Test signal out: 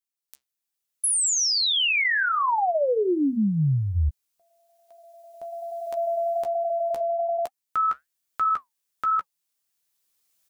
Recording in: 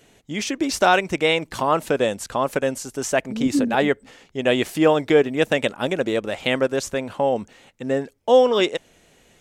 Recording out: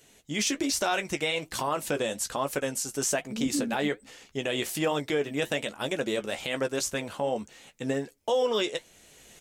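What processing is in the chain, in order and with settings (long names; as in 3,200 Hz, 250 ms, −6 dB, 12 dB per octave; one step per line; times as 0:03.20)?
camcorder AGC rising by 10 dB per second
double-tracking delay 14 ms −9.5 dB
flanger 1.2 Hz, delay 1.8 ms, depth 6.2 ms, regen −73%
high-shelf EQ 3,500 Hz +11 dB
brickwall limiter −13.5 dBFS
level −4 dB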